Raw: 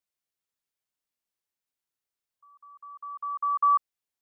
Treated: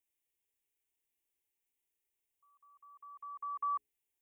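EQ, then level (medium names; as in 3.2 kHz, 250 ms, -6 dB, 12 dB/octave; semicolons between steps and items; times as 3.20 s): peaking EQ 1.2 kHz -15 dB 0.8 oct; hum notches 60/120/180/240/300/360/420 Hz; static phaser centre 920 Hz, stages 8; +5.0 dB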